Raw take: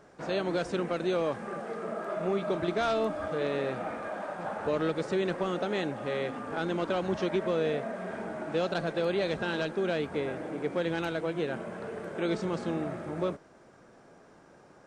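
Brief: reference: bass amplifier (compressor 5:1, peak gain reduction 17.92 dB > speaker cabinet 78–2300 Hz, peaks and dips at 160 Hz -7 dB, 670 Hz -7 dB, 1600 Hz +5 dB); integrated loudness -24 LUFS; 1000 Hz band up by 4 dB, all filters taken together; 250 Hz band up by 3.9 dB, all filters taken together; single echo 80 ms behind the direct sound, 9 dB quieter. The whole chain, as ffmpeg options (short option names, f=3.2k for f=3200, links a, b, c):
-af "equalizer=f=250:t=o:g=7,equalizer=f=1k:t=o:g=6.5,aecho=1:1:80:0.355,acompressor=threshold=-40dB:ratio=5,highpass=f=78:w=0.5412,highpass=f=78:w=1.3066,equalizer=f=160:t=q:w=4:g=-7,equalizer=f=670:t=q:w=4:g=-7,equalizer=f=1.6k:t=q:w=4:g=5,lowpass=f=2.3k:w=0.5412,lowpass=f=2.3k:w=1.3066,volume=19dB"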